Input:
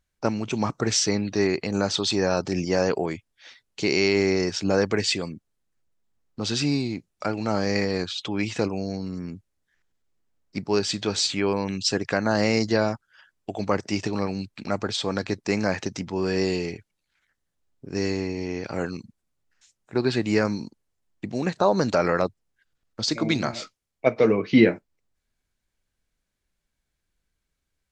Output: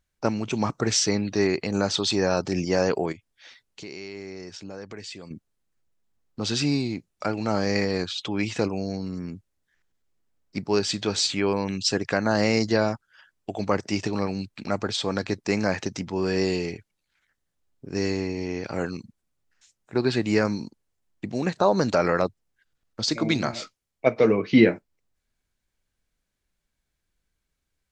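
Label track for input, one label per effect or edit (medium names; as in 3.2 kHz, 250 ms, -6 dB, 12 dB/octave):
3.120000	5.310000	compression 2.5:1, threshold -43 dBFS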